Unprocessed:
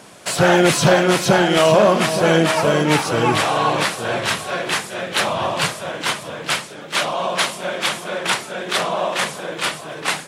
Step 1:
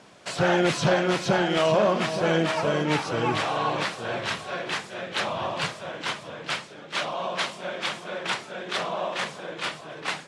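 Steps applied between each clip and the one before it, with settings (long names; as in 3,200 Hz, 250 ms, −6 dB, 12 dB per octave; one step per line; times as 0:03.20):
low-pass filter 5,900 Hz 12 dB per octave
level −8 dB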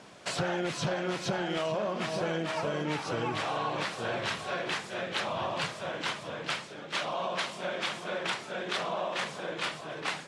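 downward compressor 5 to 1, threshold −29 dBFS, peak gain reduction 11.5 dB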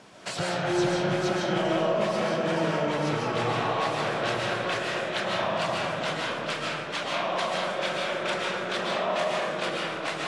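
comb and all-pass reverb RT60 2 s, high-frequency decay 0.35×, pre-delay 100 ms, DRR −3.5 dB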